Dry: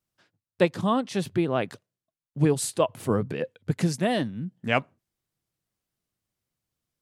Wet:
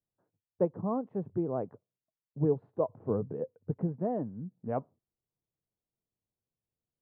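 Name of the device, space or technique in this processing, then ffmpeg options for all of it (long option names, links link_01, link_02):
under water: -af "lowpass=frequency=960:width=0.5412,lowpass=frequency=960:width=1.3066,equalizer=frequency=450:width_type=o:width=0.26:gain=5,volume=-7.5dB"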